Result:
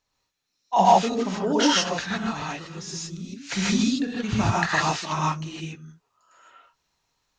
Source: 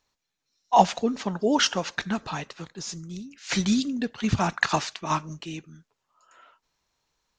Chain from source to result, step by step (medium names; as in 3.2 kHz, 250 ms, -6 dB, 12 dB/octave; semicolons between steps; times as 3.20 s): gated-style reverb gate 180 ms rising, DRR -5.5 dB; trim -4 dB